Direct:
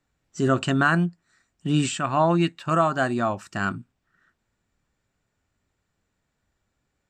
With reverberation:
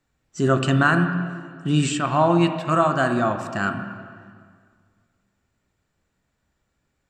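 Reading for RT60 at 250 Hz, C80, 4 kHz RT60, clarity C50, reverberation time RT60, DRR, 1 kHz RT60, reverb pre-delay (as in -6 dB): 2.0 s, 8.5 dB, 1.7 s, 7.5 dB, 1.9 s, 6.0 dB, 1.9 s, 10 ms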